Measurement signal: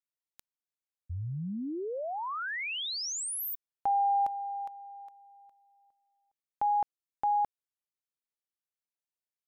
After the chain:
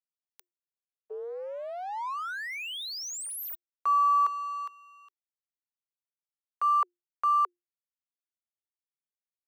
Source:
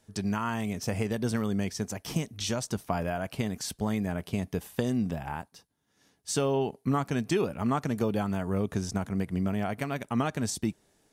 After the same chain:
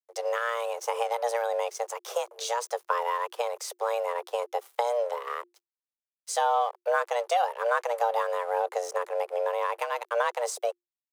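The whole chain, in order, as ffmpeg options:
ffmpeg -i in.wav -af "aeval=exprs='sgn(val(0))*max(abs(val(0))-0.00398,0)':channel_layout=same,adynamicequalizer=threshold=0.01:dfrequency=640:dqfactor=0.84:tfrequency=640:tqfactor=0.84:attack=5:release=100:ratio=0.375:range=2.5:mode=boostabove:tftype=bell,afreqshift=350" out.wav

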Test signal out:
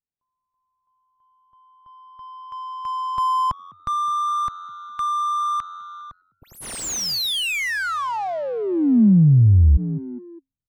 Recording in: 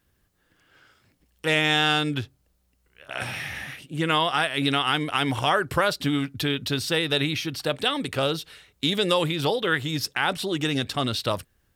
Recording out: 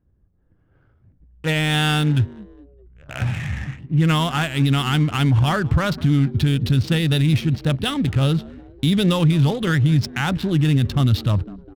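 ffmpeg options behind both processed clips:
ffmpeg -i in.wav -filter_complex "[0:a]aresample=32000,aresample=44100,asubboost=boost=6.5:cutoff=170,asplit=2[link_01][link_02];[link_02]asplit=3[link_03][link_04][link_05];[link_03]adelay=204,afreqshift=89,volume=-21dB[link_06];[link_04]adelay=408,afreqshift=178,volume=-27.4dB[link_07];[link_05]adelay=612,afreqshift=267,volume=-33.8dB[link_08];[link_06][link_07][link_08]amix=inputs=3:normalize=0[link_09];[link_01][link_09]amix=inputs=2:normalize=0,adynamicsmooth=sensitivity=5.5:basefreq=780,lowshelf=frequency=350:gain=7,alimiter=level_in=8dB:limit=-1dB:release=50:level=0:latency=1,volume=-8dB" out.wav

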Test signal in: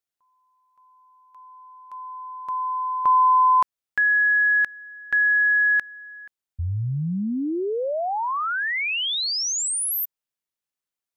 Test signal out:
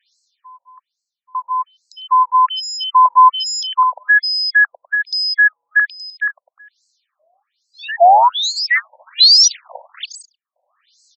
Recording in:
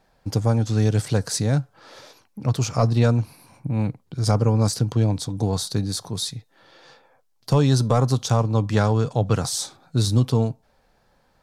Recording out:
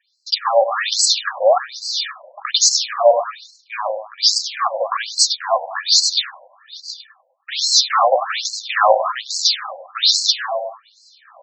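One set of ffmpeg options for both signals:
ffmpeg -i in.wav -filter_complex "[0:a]highpass=400,agate=range=-22dB:threshold=-53dB:ratio=16:release=25:detection=peak,acontrast=47,aecho=1:1:1.7:0.74,asplit=2[link_01][link_02];[link_02]aecho=0:1:101|202|303|404|505:0.168|0.0839|0.042|0.021|0.0105[link_03];[link_01][link_03]amix=inputs=2:normalize=0,asplit=2[link_04][link_05];[link_05]highpass=frequency=720:poles=1,volume=29dB,asoftclip=type=tanh:threshold=-1dB[link_06];[link_04][link_06]amix=inputs=2:normalize=0,lowpass=frequency=1000:poles=1,volume=-6dB,aexciter=amount=3.3:drive=6.8:freq=3500,areverse,acompressor=mode=upward:threshold=-22dB:ratio=2.5:attack=0.33:release=630:knee=2.83:detection=peak,areverse,afftfilt=real='re*between(b*sr/1024,670*pow(5900/670,0.5+0.5*sin(2*PI*1.2*pts/sr))/1.41,670*pow(5900/670,0.5+0.5*sin(2*PI*1.2*pts/sr))*1.41)':imag='im*between(b*sr/1024,670*pow(5900/670,0.5+0.5*sin(2*PI*1.2*pts/sr))/1.41,670*pow(5900/670,0.5+0.5*sin(2*PI*1.2*pts/sr))*1.41)':win_size=1024:overlap=0.75,volume=2.5dB" out.wav

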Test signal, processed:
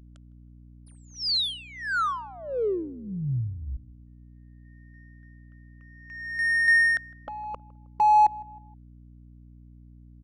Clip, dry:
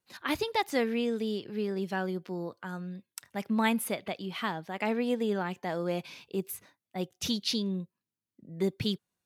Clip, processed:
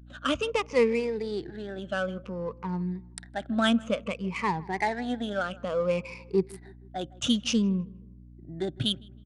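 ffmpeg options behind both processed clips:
ffmpeg -i in.wav -filter_complex "[0:a]afftfilt=real='re*pow(10,20/40*sin(2*PI*(0.83*log(max(b,1)*sr/1024/100)/log(2)-(-0.57)*(pts-256)/sr)))':imag='im*pow(10,20/40*sin(2*PI*(0.83*log(max(b,1)*sr/1024/100)/log(2)-(-0.57)*(pts-256)/sr)))':win_size=1024:overlap=0.75,adynamicsmooth=sensitivity=7.5:basefreq=2000,aeval=exprs='val(0)+0.00398*(sin(2*PI*60*n/s)+sin(2*PI*2*60*n/s)/2+sin(2*PI*3*60*n/s)/3+sin(2*PI*4*60*n/s)/4+sin(2*PI*5*60*n/s)/5)':channel_layout=same,asplit=2[link_01][link_02];[link_02]adelay=158,lowpass=frequency=1400:poles=1,volume=-21.5dB,asplit=2[link_03][link_04];[link_04]adelay=158,lowpass=frequency=1400:poles=1,volume=0.46,asplit=2[link_05][link_06];[link_06]adelay=158,lowpass=frequency=1400:poles=1,volume=0.46[link_07];[link_03][link_05][link_07]amix=inputs=3:normalize=0[link_08];[link_01][link_08]amix=inputs=2:normalize=0,aresample=22050,aresample=44100" out.wav

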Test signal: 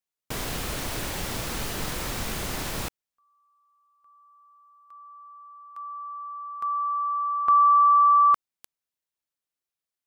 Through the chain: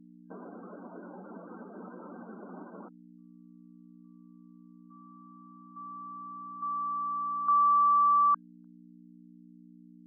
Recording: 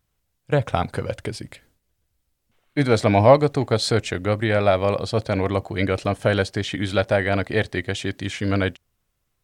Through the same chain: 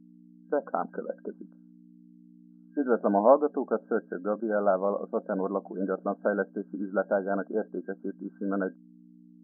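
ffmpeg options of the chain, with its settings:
ffmpeg -i in.wav -af "afftdn=noise_reduction=15:noise_floor=-30,aeval=exprs='val(0)+0.0141*(sin(2*PI*60*n/s)+sin(2*PI*2*60*n/s)/2+sin(2*PI*3*60*n/s)/3+sin(2*PI*4*60*n/s)/4+sin(2*PI*5*60*n/s)/5)':channel_layout=same,afftfilt=real='re*between(b*sr/4096,180,1600)':imag='im*between(b*sr/4096,180,1600)':win_size=4096:overlap=0.75,volume=-6dB" out.wav

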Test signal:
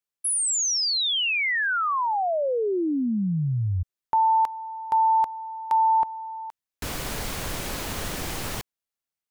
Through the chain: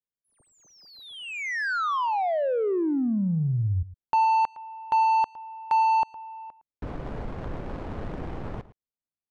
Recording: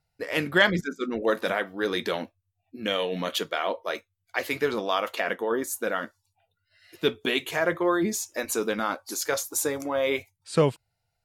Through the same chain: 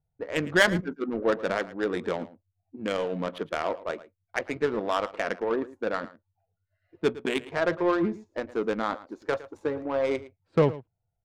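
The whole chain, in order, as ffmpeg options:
ffmpeg -i in.wav -filter_complex "[0:a]adynamicsmooth=sensitivity=1:basefreq=650,asplit=2[link_01][link_02];[link_02]adelay=110.8,volume=-17dB,highshelf=frequency=4000:gain=-2.49[link_03];[link_01][link_03]amix=inputs=2:normalize=0" out.wav

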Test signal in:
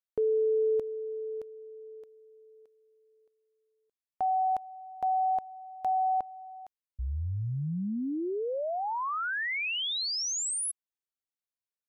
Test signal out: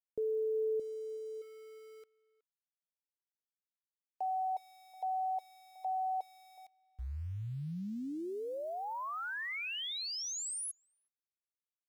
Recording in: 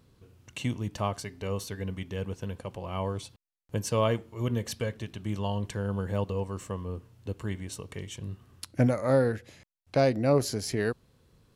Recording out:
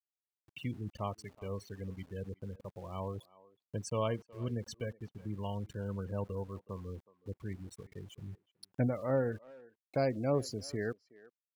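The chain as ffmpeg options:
ffmpeg -i in.wav -filter_complex "[0:a]afftfilt=real='re*gte(hypot(re,im),0.0224)':imag='im*gte(hypot(re,im),0.0224)':win_size=1024:overlap=0.75,aeval=exprs='val(0)*gte(abs(val(0)),0.00355)':channel_layout=same,asplit=2[link_01][link_02];[link_02]adelay=370,highpass=300,lowpass=3400,asoftclip=type=hard:threshold=-21.5dB,volume=-20dB[link_03];[link_01][link_03]amix=inputs=2:normalize=0,volume=-7.5dB" out.wav

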